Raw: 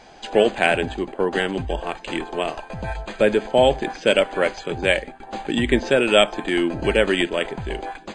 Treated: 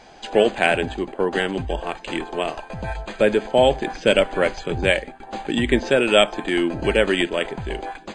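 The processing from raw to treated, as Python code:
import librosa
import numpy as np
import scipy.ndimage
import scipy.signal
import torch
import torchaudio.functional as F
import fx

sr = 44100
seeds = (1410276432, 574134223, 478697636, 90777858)

y = fx.low_shelf(x, sr, hz=140.0, db=9.5, at=(3.91, 4.9))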